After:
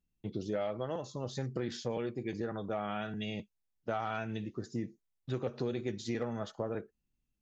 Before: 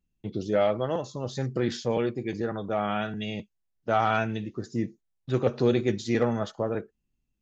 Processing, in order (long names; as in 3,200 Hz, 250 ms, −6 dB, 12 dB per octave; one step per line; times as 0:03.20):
downward compressor 5 to 1, threshold −27 dBFS, peak gain reduction 9 dB
level −4.5 dB